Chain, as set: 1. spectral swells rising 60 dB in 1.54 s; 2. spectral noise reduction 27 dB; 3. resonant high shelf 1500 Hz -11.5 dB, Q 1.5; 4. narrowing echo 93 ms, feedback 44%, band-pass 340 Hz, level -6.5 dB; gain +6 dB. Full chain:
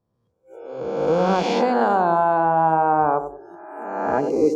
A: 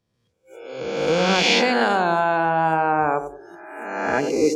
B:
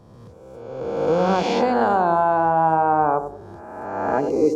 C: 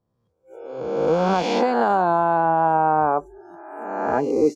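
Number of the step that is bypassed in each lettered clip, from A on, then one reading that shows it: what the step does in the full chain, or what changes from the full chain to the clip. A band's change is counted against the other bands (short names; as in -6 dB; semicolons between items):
3, 4 kHz band +13.5 dB; 2, momentary loudness spread change +2 LU; 4, echo-to-direct -13.0 dB to none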